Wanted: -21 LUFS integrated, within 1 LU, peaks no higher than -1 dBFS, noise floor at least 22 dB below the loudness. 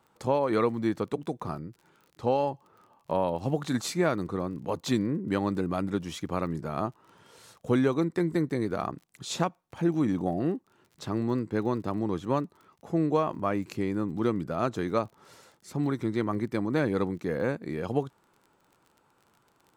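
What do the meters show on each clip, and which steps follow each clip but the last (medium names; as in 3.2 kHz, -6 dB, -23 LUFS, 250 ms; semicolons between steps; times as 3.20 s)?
tick rate 32 per s; loudness -29.5 LUFS; peak level -12.5 dBFS; loudness target -21.0 LUFS
-> de-click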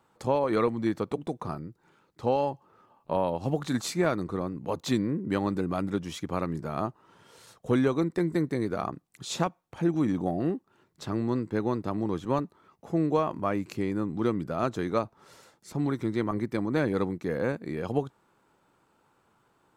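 tick rate 0 per s; loudness -29.5 LUFS; peak level -12.5 dBFS; loudness target -21.0 LUFS
-> trim +8.5 dB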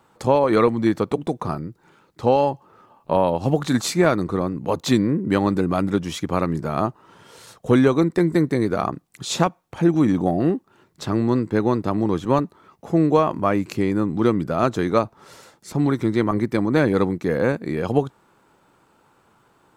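loudness -21.0 LUFS; peak level -4.0 dBFS; noise floor -60 dBFS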